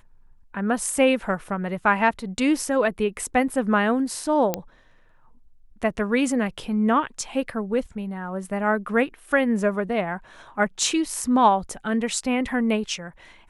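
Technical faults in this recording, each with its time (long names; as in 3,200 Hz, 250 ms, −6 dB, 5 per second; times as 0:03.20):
0:04.54: click −8 dBFS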